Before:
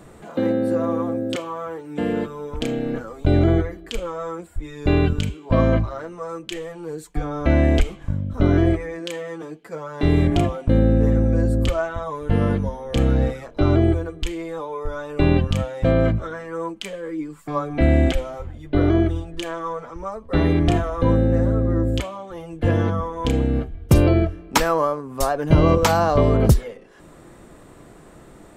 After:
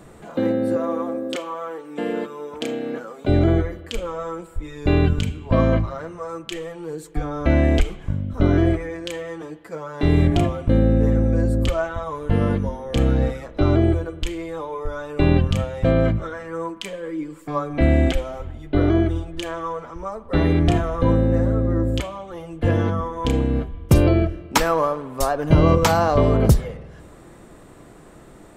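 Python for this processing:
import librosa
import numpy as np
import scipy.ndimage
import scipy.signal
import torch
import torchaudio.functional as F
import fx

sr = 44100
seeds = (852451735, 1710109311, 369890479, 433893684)

y = fx.highpass(x, sr, hz=270.0, slope=12, at=(0.76, 3.28))
y = fx.rev_spring(y, sr, rt60_s=1.7, pass_ms=(49,), chirp_ms=70, drr_db=16.0)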